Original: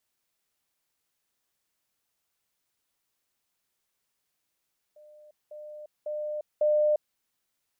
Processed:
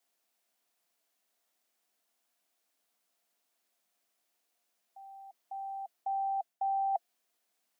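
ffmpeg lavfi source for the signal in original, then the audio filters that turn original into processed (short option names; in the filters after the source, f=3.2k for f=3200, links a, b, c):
-f lavfi -i "aevalsrc='pow(10,(-50+10*floor(t/0.55))/20)*sin(2*PI*602*t)*clip(min(mod(t,0.55),0.35-mod(t,0.55))/0.005,0,1)':d=2.2:s=44100"
-af "areverse,acompressor=threshold=-34dB:ratio=6,areverse,equalizer=f=510:w=4.4:g=10,afreqshift=180"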